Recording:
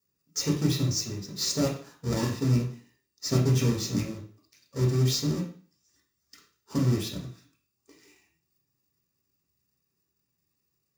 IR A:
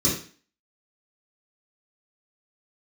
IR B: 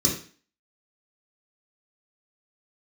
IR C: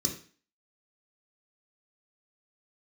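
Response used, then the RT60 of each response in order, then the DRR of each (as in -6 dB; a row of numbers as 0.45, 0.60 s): B; 0.40, 0.40, 0.40 s; -8.5, -3.5, 0.5 dB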